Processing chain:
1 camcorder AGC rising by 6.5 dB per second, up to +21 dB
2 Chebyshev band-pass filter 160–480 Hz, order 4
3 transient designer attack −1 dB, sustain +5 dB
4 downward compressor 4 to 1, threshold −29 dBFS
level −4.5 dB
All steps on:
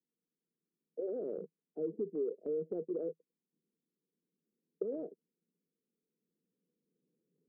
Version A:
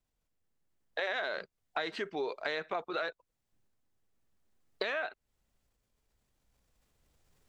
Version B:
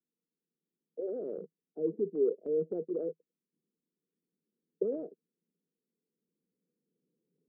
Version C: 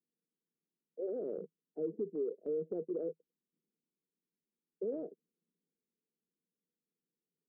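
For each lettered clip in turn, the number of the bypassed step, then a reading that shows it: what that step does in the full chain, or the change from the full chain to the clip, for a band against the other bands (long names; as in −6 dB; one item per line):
2, change in momentary loudness spread −5 LU
4, average gain reduction 3.0 dB
1, change in crest factor −2.5 dB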